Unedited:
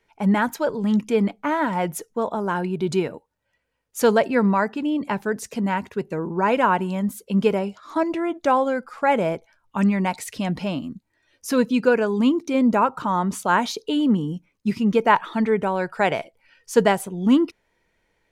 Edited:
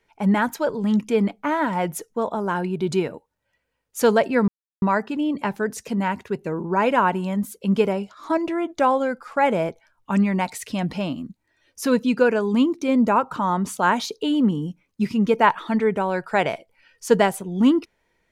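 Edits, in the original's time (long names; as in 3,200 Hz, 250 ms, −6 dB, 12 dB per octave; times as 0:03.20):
0:04.48: splice in silence 0.34 s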